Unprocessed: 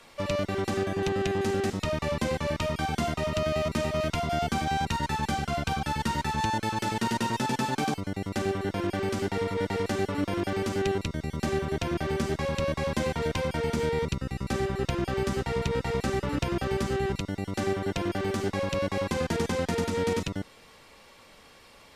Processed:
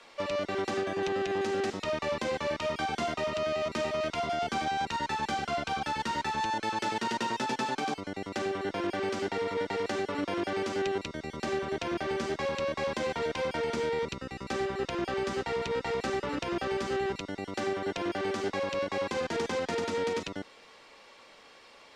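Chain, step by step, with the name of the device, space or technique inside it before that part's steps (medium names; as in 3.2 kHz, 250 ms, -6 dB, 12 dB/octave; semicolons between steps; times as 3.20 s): DJ mixer with the lows and highs turned down (three-band isolator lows -14 dB, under 260 Hz, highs -18 dB, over 7.6 kHz; peak limiter -21.5 dBFS, peak gain reduction 5.5 dB)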